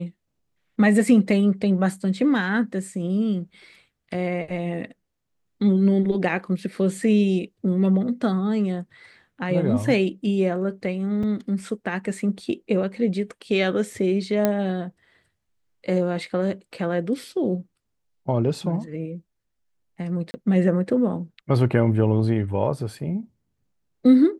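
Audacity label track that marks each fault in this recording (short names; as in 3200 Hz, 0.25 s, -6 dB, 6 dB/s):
11.230000	11.230000	gap 4.4 ms
14.450000	14.450000	pop -7 dBFS
20.310000	20.340000	gap 30 ms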